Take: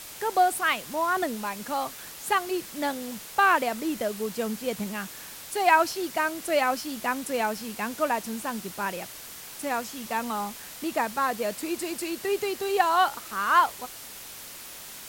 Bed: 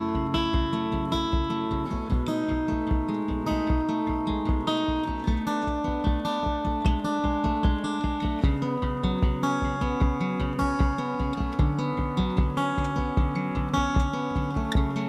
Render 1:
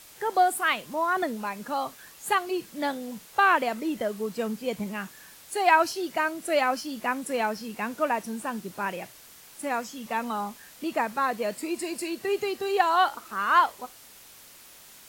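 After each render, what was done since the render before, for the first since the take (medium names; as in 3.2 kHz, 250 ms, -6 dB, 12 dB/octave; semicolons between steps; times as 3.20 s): noise print and reduce 8 dB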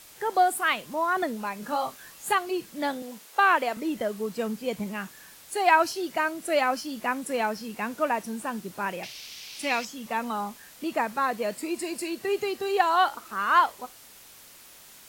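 1.60–2.32 s: doubling 24 ms -5 dB; 3.02–3.77 s: high-pass 290 Hz; 9.03–9.85 s: high-order bell 3.6 kHz +14 dB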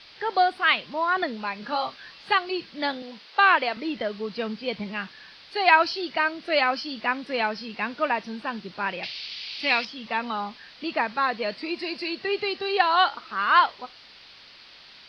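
elliptic low-pass 4.7 kHz, stop band 40 dB; treble shelf 2.3 kHz +12 dB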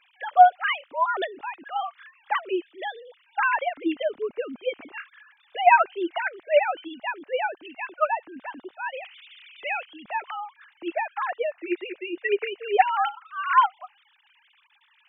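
formants replaced by sine waves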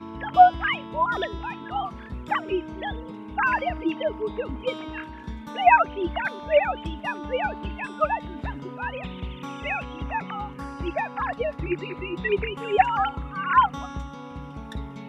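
add bed -10.5 dB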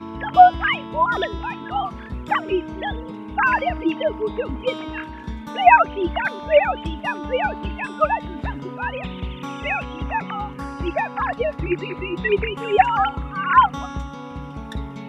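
trim +4.5 dB; peak limiter -1 dBFS, peak gain reduction 1.5 dB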